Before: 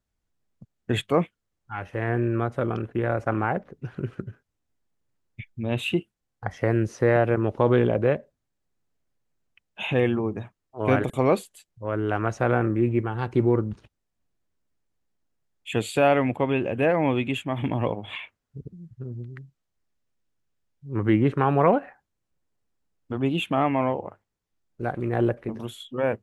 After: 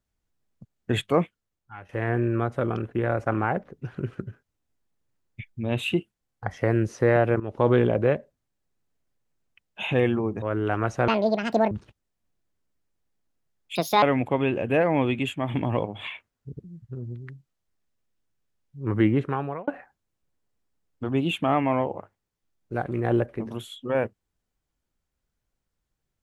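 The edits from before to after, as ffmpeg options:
-filter_complex "[0:a]asplit=9[a][b][c][d][e][f][g][h][i];[a]atrim=end=1.89,asetpts=PTS-STARTPTS,afade=t=out:st=1.19:d=0.7:silence=0.237137[j];[b]atrim=start=1.89:end=7.4,asetpts=PTS-STARTPTS,afade=t=in:d=0.004:c=hsin:silence=0.237137,afade=t=out:st=5.506:d=0.004:c=hsin:silence=0.177828[k];[c]atrim=start=7.4:end=10.422,asetpts=PTS-STARTPTS,afade=t=in:d=0.25:silence=0.177828[l];[d]atrim=start=11.838:end=12.504[m];[e]atrim=start=12.5:end=13.67,asetpts=PTS-STARTPTS,asetrate=81585,aresample=44100,atrim=end_sample=27890,asetpts=PTS-STARTPTS[n];[f]atrim=start=13.666:end=15.714[o];[g]atrim=start=15.71:end=16.11,asetpts=PTS-STARTPTS,asetrate=64827,aresample=44100[p];[h]atrim=start=16.106:end=21.76,asetpts=PTS-STARTPTS,afade=t=out:st=5.014:d=0.64[q];[i]atrim=start=21.76,asetpts=PTS-STARTPTS,afade=t=in:d=0.004:c=hsin[r];[j][k][l]concat=n=3:v=0:a=1[s];[s][m]acrossfade=d=0.004:c1=hsin:c2=hsin[t];[t][n]acrossfade=d=0.004:c1=hsin:c2=hsin[u];[u][o]acrossfade=d=0.004:c1=hsin:c2=hsin[v];[v][p]acrossfade=d=0.004:c1=hsin:c2=hsin[w];[q][r]concat=n=2:v=0:a=1[x];[w][x]acrossfade=d=0.004:c1=hsin:c2=hsin"

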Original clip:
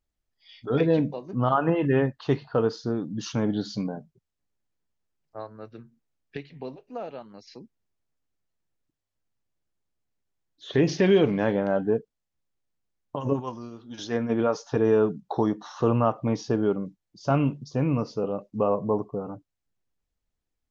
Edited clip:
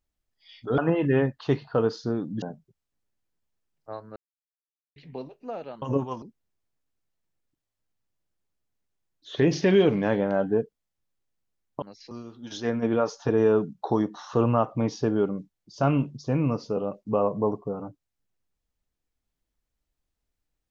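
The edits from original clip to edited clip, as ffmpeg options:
-filter_complex "[0:a]asplit=9[a][b][c][d][e][f][g][h][i];[a]atrim=end=0.782[j];[b]atrim=start=1.578:end=3.222[k];[c]atrim=start=3.888:end=5.63,asetpts=PTS-STARTPTS,afade=t=out:st=1.738:d=0.004:c=hsin[l];[d]atrim=start=5.63:end=6.43,asetpts=PTS-STARTPTS,volume=0[m];[e]atrim=start=6.43:end=7.292,asetpts=PTS-STARTPTS,afade=t=in:d=0.004:c=hsin[n];[f]atrim=start=13.178:end=13.582[o];[g]atrim=start=7.578:end=13.182[p];[h]atrim=start=7.288:end=7.582[q];[i]atrim=start=13.578[r];[j][k]acrossfade=d=0.004:c1=hsin:c2=hsin[s];[l][m][n]concat=n=3:v=0:a=1[t];[s][t]acrossfade=d=0.004:c1=hsin:c2=hsin[u];[u][o]acrossfade=d=0.004:c1=hsin:c2=hsin[v];[v][p]acrossfade=d=0.004:c1=hsin:c2=hsin[w];[w][q]acrossfade=d=0.004:c1=hsin:c2=hsin[x];[x][r]acrossfade=d=0.004:c1=hsin:c2=hsin"

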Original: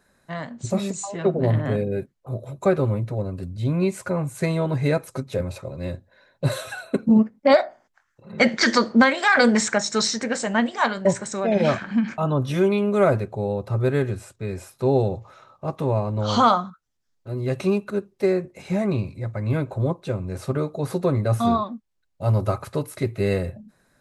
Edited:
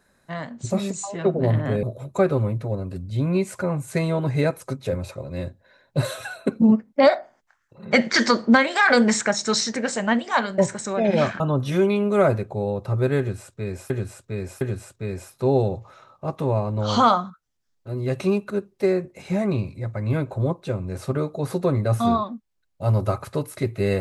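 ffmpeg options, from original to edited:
-filter_complex "[0:a]asplit=5[a][b][c][d][e];[a]atrim=end=1.832[f];[b]atrim=start=2.298:end=11.872[g];[c]atrim=start=12.218:end=14.722[h];[d]atrim=start=14.008:end=14.722[i];[e]atrim=start=14.008[j];[f][g]acrossfade=d=0.004:c1=hsin:c2=hsin[k];[k][h]acrossfade=d=0.004:c1=hsin:c2=hsin[l];[l][i]acrossfade=d=0.004:c1=hsin:c2=hsin[m];[m][j]acrossfade=d=0.004:c1=hsin:c2=hsin"

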